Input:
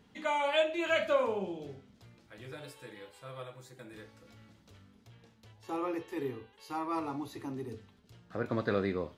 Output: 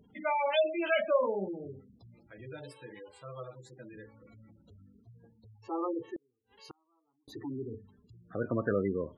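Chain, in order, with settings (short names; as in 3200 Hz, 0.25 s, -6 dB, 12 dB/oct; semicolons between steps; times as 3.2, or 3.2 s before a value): spectral gate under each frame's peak -15 dB strong; 6.16–7.28 flipped gate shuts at -36 dBFS, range -41 dB; gain +1.5 dB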